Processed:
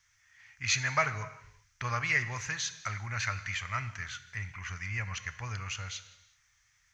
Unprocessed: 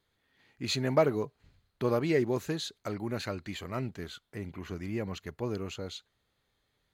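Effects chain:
background noise violet −68 dBFS
drawn EQ curve 110 Hz 0 dB, 220 Hz −20 dB, 350 Hz −28 dB, 1,200 Hz +3 dB, 2,100 Hz +10 dB, 4,000 Hz −5 dB, 6,000 Hz +11 dB, 8,800 Hz −15 dB, 14,000 Hz −26 dB
reverb whose tail is shaped and stops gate 410 ms falling, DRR 11.5 dB
level +2.5 dB

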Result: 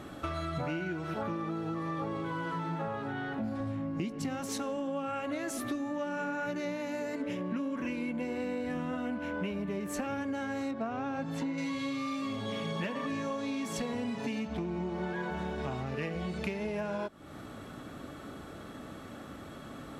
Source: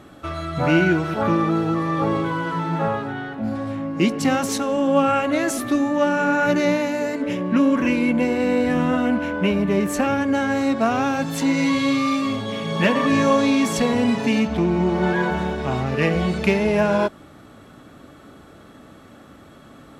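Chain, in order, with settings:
0:03.60–0:04.43: low-shelf EQ 170 Hz +10.5 dB
0:10.71–0:11.58: low-pass filter 1,700 Hz 6 dB per octave
downward compressor 12 to 1, threshold −32 dBFS, peak gain reduction 21.5 dB

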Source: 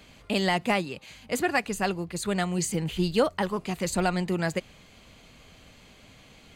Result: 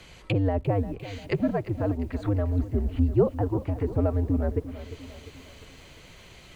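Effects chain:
frequency shifter −96 Hz
treble cut that deepens with the level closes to 550 Hz, closed at −26 dBFS
feedback echo at a low word length 349 ms, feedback 55%, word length 9 bits, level −14 dB
level +3.5 dB

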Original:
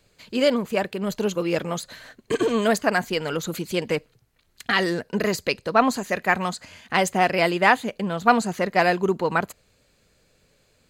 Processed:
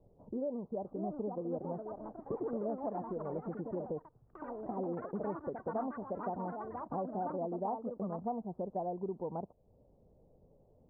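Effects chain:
Butterworth low-pass 880 Hz 48 dB per octave
downward compressor 3 to 1, threshold −41 dBFS, peak gain reduction 19.5 dB
delay with pitch and tempo change per echo 699 ms, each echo +4 semitones, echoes 3, each echo −6 dB

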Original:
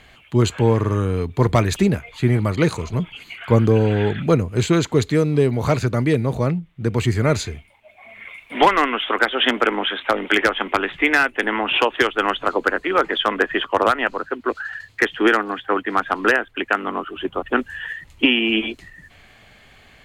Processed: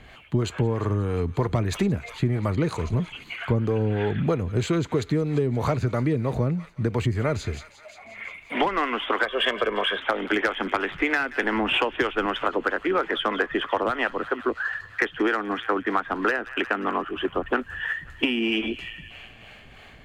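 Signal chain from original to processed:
delay with a high-pass on its return 177 ms, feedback 68%, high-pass 1,600 Hz, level −17 dB
in parallel at −9 dB: soft clipping −20 dBFS, distortion −6 dB
0:09.23–0:09.98: on the sum: comb filter 1.8 ms, depth 73%
0:11.40–0:12.26: low-shelf EQ 150 Hz +9 dB
two-band tremolo in antiphase 3.1 Hz, depth 50%, crossover 420 Hz
high-shelf EQ 3,000 Hz −7.5 dB
downward compressor 6 to 1, threshold −22 dBFS, peak gain reduction 11.5 dB
level +2 dB

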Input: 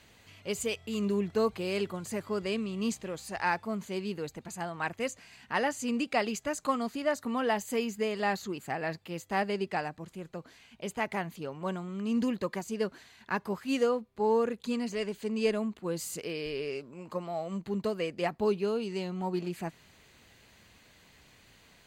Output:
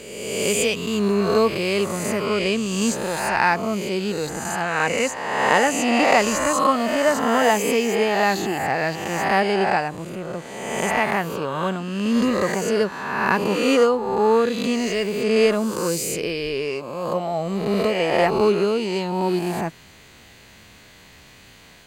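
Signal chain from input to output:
peak hold with a rise ahead of every peak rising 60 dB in 1.40 s
level +8.5 dB

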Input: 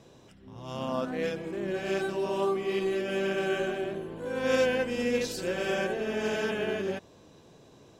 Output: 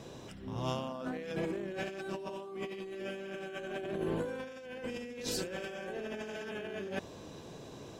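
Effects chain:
compressor whose output falls as the input rises −39 dBFS, ratio −1
level −1 dB

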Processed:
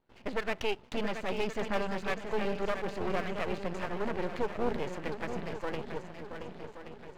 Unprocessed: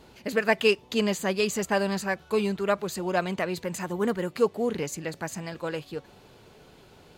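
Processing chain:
noise gate with hold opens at −42 dBFS
low-pass filter 2,600 Hz 12 dB per octave
brickwall limiter −18.5 dBFS, peak gain reduction 8 dB
feedback echo with a long and a short gap by turns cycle 1,126 ms, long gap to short 1.5 to 1, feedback 41%, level −8 dB
half-wave rectification

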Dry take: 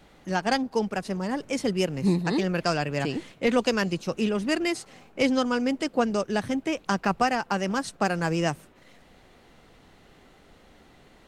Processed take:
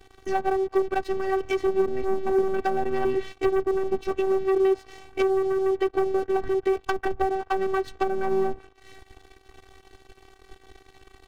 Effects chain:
treble cut that deepens with the level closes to 450 Hz, closed at −20 dBFS
low-shelf EQ 110 Hz +7.5 dB
leveller curve on the samples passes 3
phases set to zero 384 Hz
level −2 dB

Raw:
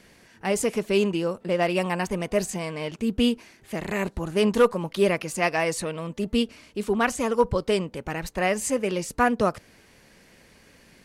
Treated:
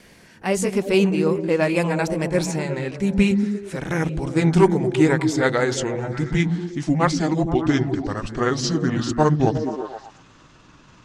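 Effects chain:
pitch glide at a constant tempo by −9.5 semitones starting unshifted
echo through a band-pass that steps 119 ms, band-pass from 160 Hz, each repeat 0.7 octaves, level −1.5 dB
tape wow and flutter 27 cents
level +4.5 dB

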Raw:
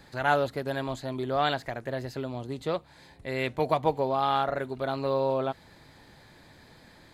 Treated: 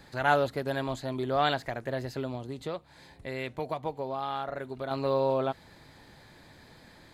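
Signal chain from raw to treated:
0:02.35–0:04.91: downward compressor 2 to 1, threshold −36 dBFS, peak gain reduction 10 dB

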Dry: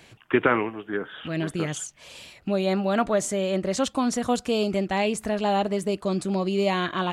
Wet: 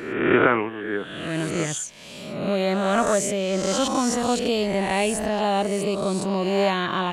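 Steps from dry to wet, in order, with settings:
peak hold with a rise ahead of every peak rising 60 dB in 1.02 s

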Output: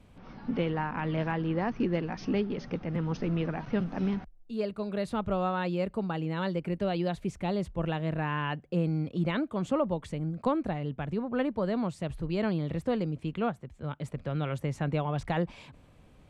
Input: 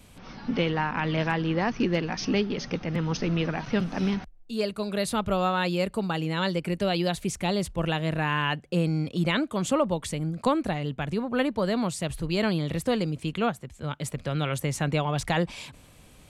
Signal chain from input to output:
low-pass filter 1,300 Hz 6 dB per octave
level −3 dB

